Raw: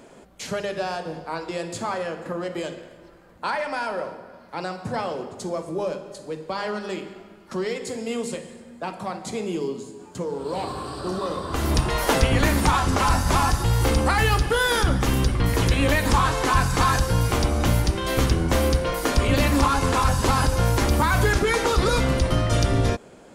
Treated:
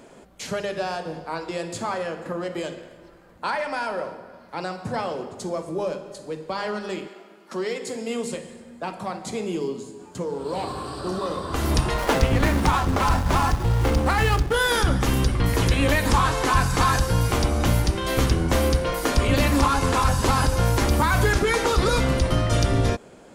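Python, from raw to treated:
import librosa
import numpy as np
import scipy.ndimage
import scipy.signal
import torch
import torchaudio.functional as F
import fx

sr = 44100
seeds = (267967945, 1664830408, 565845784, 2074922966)

y = fx.highpass(x, sr, hz=fx.line((7.07, 380.0), (8.23, 120.0)), slope=12, at=(7.07, 8.23), fade=0.02)
y = fx.backlash(y, sr, play_db=-23.0, at=(11.94, 14.54))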